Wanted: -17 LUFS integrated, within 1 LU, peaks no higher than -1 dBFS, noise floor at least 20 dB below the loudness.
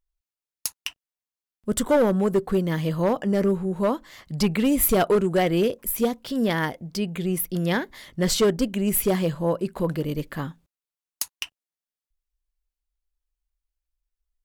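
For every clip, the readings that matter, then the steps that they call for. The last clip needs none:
clipped 1.0%; flat tops at -14.5 dBFS; loudness -24.0 LUFS; peak -14.5 dBFS; loudness target -17.0 LUFS
-> clip repair -14.5 dBFS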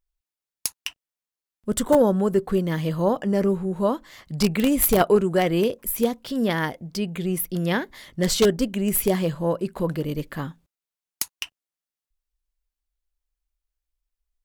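clipped 0.0%; loudness -23.5 LUFS; peak -5.5 dBFS; loudness target -17.0 LUFS
-> gain +6.5 dB; limiter -1 dBFS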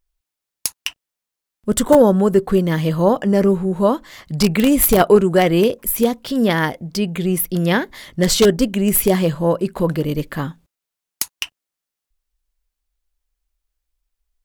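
loudness -17.0 LUFS; peak -1.0 dBFS; noise floor -85 dBFS

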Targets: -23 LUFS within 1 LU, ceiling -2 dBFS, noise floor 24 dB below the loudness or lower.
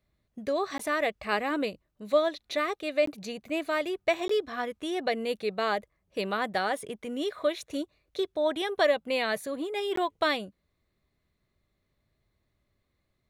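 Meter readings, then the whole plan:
dropouts 4; longest dropout 14 ms; loudness -30.0 LUFS; peak -12.0 dBFS; loudness target -23.0 LUFS
-> interpolate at 0.78/3.06/4.28/9.96, 14 ms; gain +7 dB

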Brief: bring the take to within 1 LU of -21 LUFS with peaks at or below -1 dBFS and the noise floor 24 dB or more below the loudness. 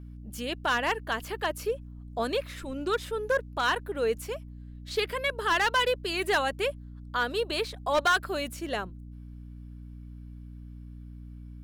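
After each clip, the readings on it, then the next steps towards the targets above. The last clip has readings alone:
clipped 0.6%; flat tops at -19.0 dBFS; hum 60 Hz; harmonics up to 300 Hz; hum level -41 dBFS; loudness -29.0 LUFS; peak -19.0 dBFS; loudness target -21.0 LUFS
-> clip repair -19 dBFS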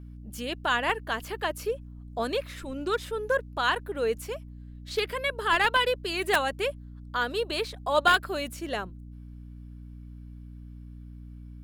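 clipped 0.0%; hum 60 Hz; harmonics up to 300 Hz; hum level -41 dBFS
-> notches 60/120/180/240/300 Hz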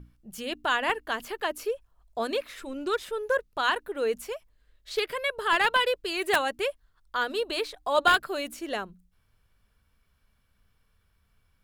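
hum none; loudness -28.0 LUFS; peak -10.0 dBFS; loudness target -21.0 LUFS
-> gain +7 dB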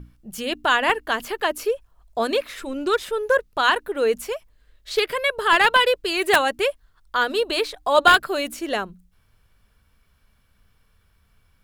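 loudness -21.5 LUFS; peak -3.0 dBFS; noise floor -62 dBFS

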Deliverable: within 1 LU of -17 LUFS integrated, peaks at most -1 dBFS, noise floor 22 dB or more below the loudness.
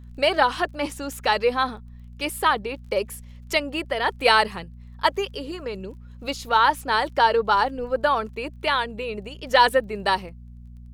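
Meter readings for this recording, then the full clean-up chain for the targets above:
ticks 20/s; hum 60 Hz; harmonics up to 240 Hz; hum level -40 dBFS; loudness -23.0 LUFS; peak -3.0 dBFS; loudness target -17.0 LUFS
-> de-click; de-hum 60 Hz, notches 4; gain +6 dB; limiter -1 dBFS

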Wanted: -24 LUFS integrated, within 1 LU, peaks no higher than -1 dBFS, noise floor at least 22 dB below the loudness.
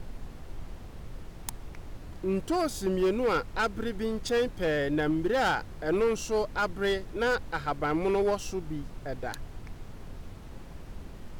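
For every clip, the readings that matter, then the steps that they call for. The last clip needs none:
clipped 1.4%; flat tops at -21.0 dBFS; noise floor -44 dBFS; noise floor target -52 dBFS; loudness -29.5 LUFS; peak -21.0 dBFS; loudness target -24.0 LUFS
-> clip repair -21 dBFS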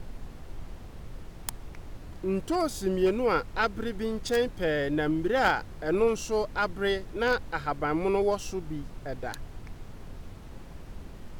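clipped 0.0%; noise floor -44 dBFS; noise floor target -51 dBFS
-> noise print and reduce 7 dB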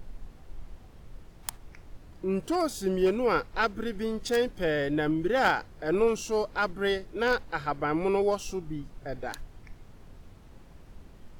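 noise floor -51 dBFS; loudness -29.0 LUFS; peak -12.0 dBFS; loudness target -24.0 LUFS
-> gain +5 dB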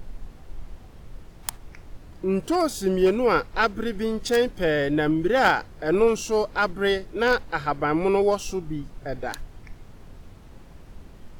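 loudness -24.0 LUFS; peak -7.0 dBFS; noise floor -46 dBFS

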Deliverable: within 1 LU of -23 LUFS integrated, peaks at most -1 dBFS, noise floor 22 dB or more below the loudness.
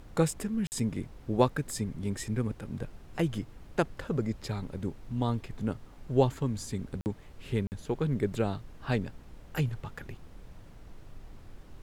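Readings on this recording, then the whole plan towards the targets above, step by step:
dropouts 3; longest dropout 49 ms; noise floor -51 dBFS; noise floor target -55 dBFS; loudness -32.5 LUFS; peak -9.0 dBFS; loudness target -23.0 LUFS
-> interpolate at 0.67/7.01/7.67, 49 ms; noise print and reduce 6 dB; gain +9.5 dB; limiter -1 dBFS

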